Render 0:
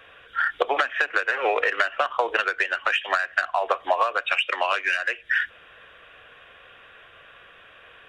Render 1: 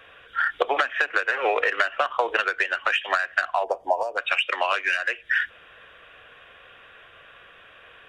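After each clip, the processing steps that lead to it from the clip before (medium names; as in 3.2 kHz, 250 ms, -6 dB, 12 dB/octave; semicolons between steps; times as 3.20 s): time-frequency box 3.64–4.17 s, 1–4.4 kHz -21 dB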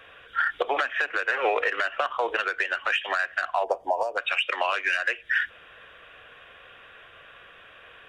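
peak limiter -13.5 dBFS, peak gain reduction 6.5 dB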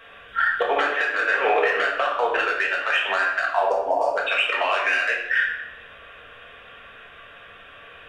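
simulated room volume 340 m³, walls mixed, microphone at 1.6 m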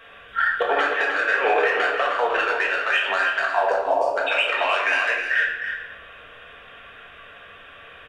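delay 307 ms -8 dB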